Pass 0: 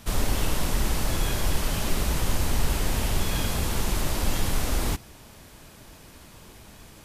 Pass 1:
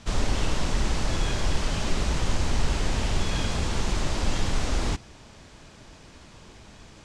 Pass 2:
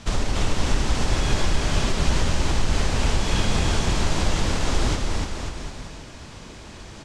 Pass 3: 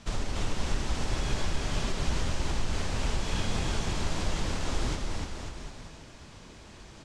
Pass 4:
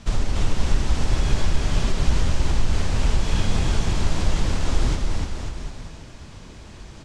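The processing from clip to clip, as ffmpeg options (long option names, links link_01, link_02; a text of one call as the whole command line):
ffmpeg -i in.wav -af "lowpass=frequency=7400:width=0.5412,lowpass=frequency=7400:width=1.3066" out.wav
ffmpeg -i in.wav -af "acompressor=threshold=-23dB:ratio=6,aecho=1:1:290|536.5|746|924.1|1076:0.631|0.398|0.251|0.158|0.1,volume=5.5dB" out.wav
ffmpeg -i in.wav -af "flanger=delay=4.9:depth=7.6:regen=-70:speed=1.6:shape=sinusoidal,volume=-4dB" out.wav
ffmpeg -i in.wav -af "lowshelf=frequency=170:gain=7,volume=4dB" out.wav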